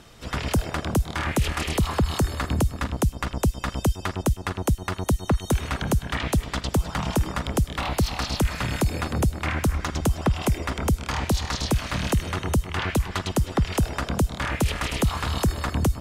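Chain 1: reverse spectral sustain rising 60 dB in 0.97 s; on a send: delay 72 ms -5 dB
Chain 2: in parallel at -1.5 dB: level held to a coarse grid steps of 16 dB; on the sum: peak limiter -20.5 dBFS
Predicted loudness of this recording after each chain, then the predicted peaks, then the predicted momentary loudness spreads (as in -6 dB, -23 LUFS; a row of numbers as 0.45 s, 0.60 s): -19.5 LUFS, -29.5 LUFS; -4.0 dBFS, -20.5 dBFS; 2 LU, 2 LU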